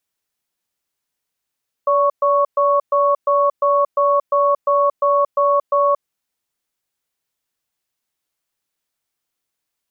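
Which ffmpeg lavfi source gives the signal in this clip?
-f lavfi -i "aevalsrc='0.178*(sin(2*PI*573*t)+sin(2*PI*1110*t))*clip(min(mod(t,0.35),0.23-mod(t,0.35))/0.005,0,1)':d=4.18:s=44100"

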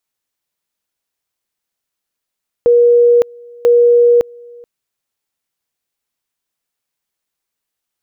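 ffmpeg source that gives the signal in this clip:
-f lavfi -i "aevalsrc='pow(10,(-5.5-27.5*gte(mod(t,0.99),0.56))/20)*sin(2*PI*478*t)':d=1.98:s=44100"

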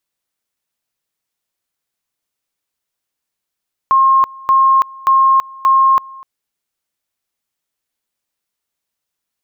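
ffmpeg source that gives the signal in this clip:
-f lavfi -i "aevalsrc='pow(10,(-7-24*gte(mod(t,0.58),0.33))/20)*sin(2*PI*1070*t)':d=2.32:s=44100"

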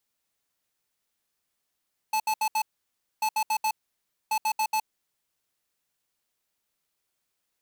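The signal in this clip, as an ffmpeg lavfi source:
-f lavfi -i "aevalsrc='0.0562*(2*lt(mod(869*t,1),0.5)-1)*clip(min(mod(mod(t,1.09),0.14),0.07-mod(mod(t,1.09),0.14))/0.005,0,1)*lt(mod(t,1.09),0.56)':d=3.27:s=44100"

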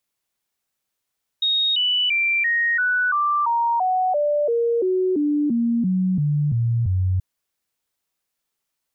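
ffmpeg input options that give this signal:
-f lavfi -i "aevalsrc='0.141*clip(min(mod(t,0.34),0.34-mod(t,0.34))/0.005,0,1)*sin(2*PI*3740*pow(2,-floor(t/0.34)/3)*mod(t,0.34))':d=5.78:s=44100"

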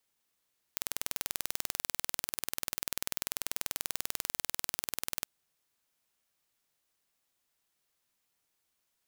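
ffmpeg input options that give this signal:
-f lavfi -i "aevalsrc='0.562*eq(mod(n,2162),0)':d=4.48:s=44100"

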